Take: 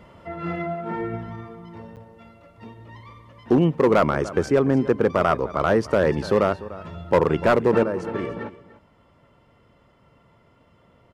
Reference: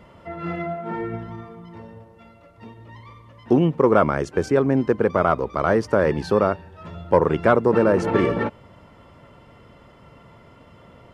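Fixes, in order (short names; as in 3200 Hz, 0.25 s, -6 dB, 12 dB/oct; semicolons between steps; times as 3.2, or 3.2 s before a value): clip repair -10 dBFS; interpolate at 1.96, 8.6 ms; inverse comb 0.295 s -17.5 dB; gain 0 dB, from 7.83 s +9 dB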